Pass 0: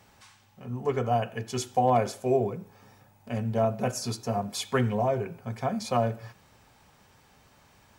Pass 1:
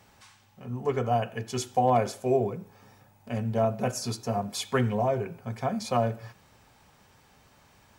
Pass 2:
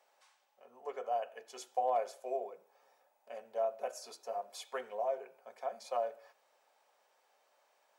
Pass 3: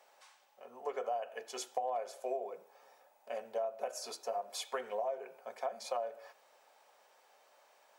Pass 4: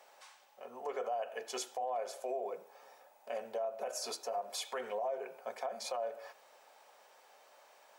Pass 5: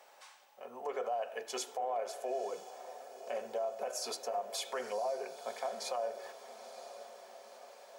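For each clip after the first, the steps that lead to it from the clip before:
nothing audible
ladder high-pass 490 Hz, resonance 50%; gain -4.5 dB
compressor 6:1, threshold -40 dBFS, peak gain reduction 12 dB; gain +6.5 dB
limiter -33 dBFS, peak gain reduction 10.5 dB; gain +4 dB
diffused feedback echo 0.97 s, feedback 56%, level -13 dB; gain +1 dB

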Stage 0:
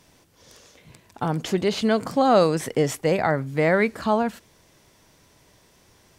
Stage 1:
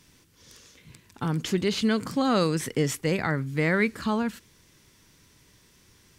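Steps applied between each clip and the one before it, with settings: bell 680 Hz -13 dB 1 oct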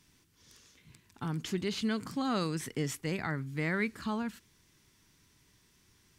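bell 520 Hz -6.5 dB 0.4 oct; gain -7.5 dB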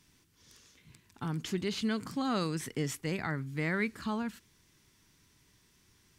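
nothing audible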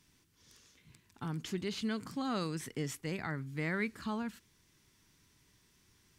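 vocal rider 2 s; gain -3.5 dB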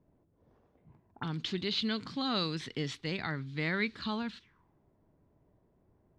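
envelope low-pass 570–3900 Hz up, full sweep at -40.5 dBFS; gain +1.5 dB

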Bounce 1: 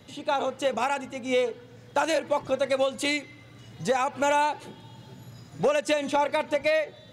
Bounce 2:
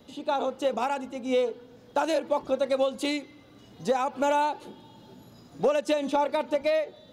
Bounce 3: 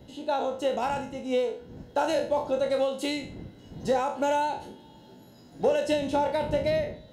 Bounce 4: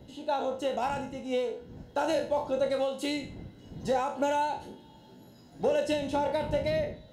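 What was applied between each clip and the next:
graphic EQ 125/250/2000/8000 Hz -12/+4/-8/-7 dB
spectral trails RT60 0.43 s; wind noise 160 Hz -39 dBFS; notch comb 1200 Hz; gain -1.5 dB
phaser 1.9 Hz, delay 1.5 ms, feedback 21%; gain -2.5 dB

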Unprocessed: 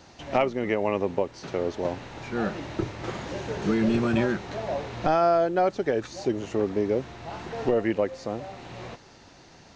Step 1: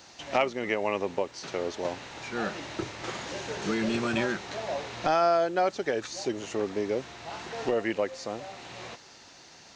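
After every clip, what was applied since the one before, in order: tilt +2.5 dB/oct; gain -1 dB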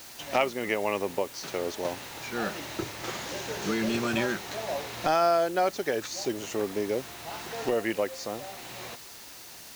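high shelf 7300 Hz +7.5 dB; added noise white -48 dBFS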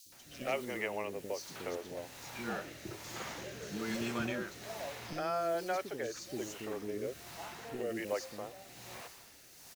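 rotary speaker horn 1.2 Hz; three bands offset in time highs, lows, mids 60/120 ms, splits 360/3700 Hz; gain -5 dB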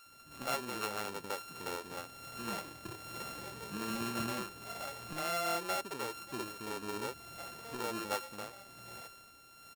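sample sorter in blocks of 32 samples; gain -1 dB

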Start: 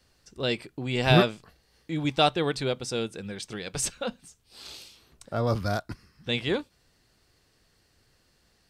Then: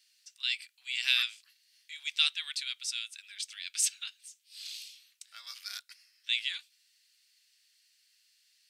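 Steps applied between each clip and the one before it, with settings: inverse Chebyshev high-pass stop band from 380 Hz, stop band 80 dB; gain +1.5 dB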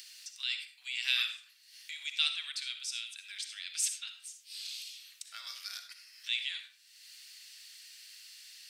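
upward compressor, threshold -33 dBFS; reverb RT60 0.45 s, pre-delay 20 ms, DRR 6.5 dB; gain -3.5 dB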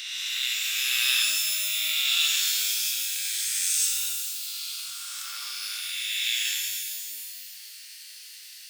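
spectral swells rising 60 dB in 2.97 s; shimmer reverb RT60 1.9 s, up +12 st, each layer -2 dB, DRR 0.5 dB

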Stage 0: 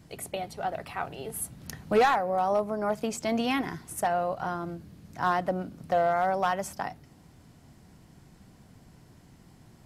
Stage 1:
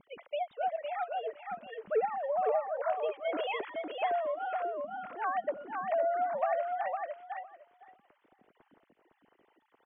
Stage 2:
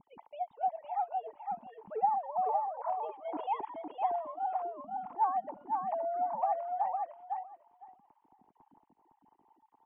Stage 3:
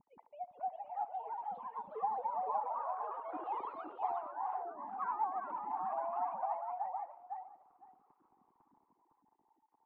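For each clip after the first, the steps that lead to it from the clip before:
sine-wave speech; compressor 4:1, threshold -30 dBFS, peak gain reduction 15.5 dB; on a send: feedback echo 0.509 s, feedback 15%, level -4 dB; on the sum: gain +1 dB
EQ curve 280 Hz 0 dB, 580 Hz -14 dB, 880 Hz +11 dB, 1400 Hz -16 dB
LPF 2300 Hz 24 dB/oct; echoes that change speed 0.438 s, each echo +2 st, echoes 3; narrowing echo 73 ms, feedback 78%, band-pass 520 Hz, level -17 dB; gain -7.5 dB

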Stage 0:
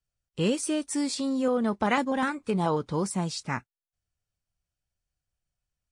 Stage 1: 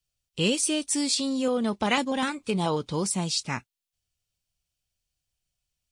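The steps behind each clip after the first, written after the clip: resonant high shelf 2200 Hz +7 dB, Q 1.5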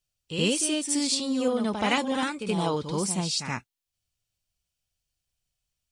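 reverse echo 76 ms -7 dB; gain -1 dB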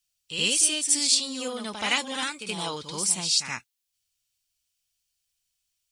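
tilt shelf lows -8.5 dB, about 1300 Hz; gain -1.5 dB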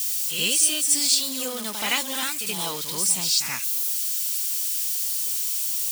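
switching spikes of -22 dBFS

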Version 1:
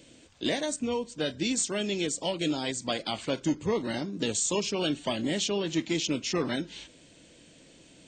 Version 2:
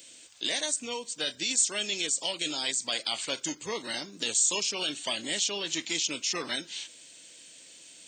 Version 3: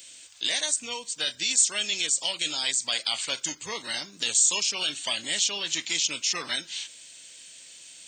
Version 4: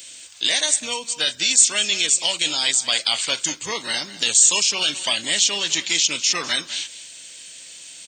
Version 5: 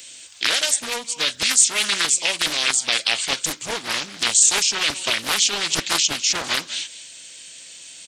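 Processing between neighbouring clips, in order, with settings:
tilt +4.5 dB/oct; in parallel at -2.5 dB: negative-ratio compressor -27 dBFS, ratio -0.5; on the sum: gain -8.5 dB
bell 330 Hz -9.5 dB 2.2 oct; gain +4 dB
echo 0.2 s -16 dB; gain +7 dB
Doppler distortion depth 0.79 ms

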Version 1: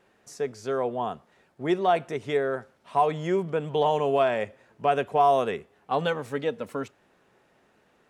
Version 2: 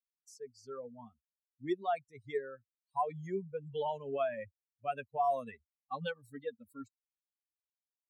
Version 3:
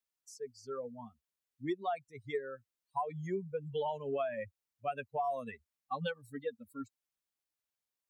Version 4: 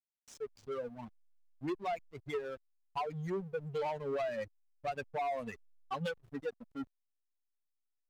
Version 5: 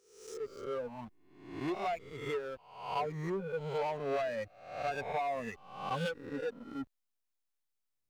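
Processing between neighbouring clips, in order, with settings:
per-bin expansion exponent 3; gain -6.5 dB
compressor 6:1, threshold -35 dBFS, peak gain reduction 8.5 dB; gain +3.5 dB
added harmonics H 5 -15 dB, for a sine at -23.5 dBFS; backlash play -41 dBFS; gain -2.5 dB
spectral swells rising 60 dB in 0.70 s

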